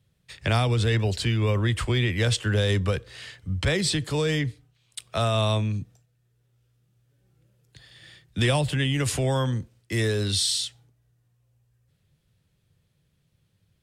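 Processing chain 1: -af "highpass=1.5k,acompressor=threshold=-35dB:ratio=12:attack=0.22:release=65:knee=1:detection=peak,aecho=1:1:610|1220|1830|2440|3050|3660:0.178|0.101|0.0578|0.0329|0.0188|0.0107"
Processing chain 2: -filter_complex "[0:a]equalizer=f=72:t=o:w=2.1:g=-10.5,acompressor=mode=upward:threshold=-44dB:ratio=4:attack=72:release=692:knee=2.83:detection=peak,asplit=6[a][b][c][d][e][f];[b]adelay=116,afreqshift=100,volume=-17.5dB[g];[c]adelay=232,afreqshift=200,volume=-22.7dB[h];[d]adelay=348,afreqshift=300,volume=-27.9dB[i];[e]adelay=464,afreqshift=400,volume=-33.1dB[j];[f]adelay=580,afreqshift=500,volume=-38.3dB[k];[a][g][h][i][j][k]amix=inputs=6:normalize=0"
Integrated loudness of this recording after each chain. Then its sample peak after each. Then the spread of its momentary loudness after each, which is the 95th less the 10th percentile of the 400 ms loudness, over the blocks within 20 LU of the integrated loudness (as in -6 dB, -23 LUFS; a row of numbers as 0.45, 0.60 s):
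-42.5, -27.0 LUFS; -30.0, -10.5 dBFS; 18, 16 LU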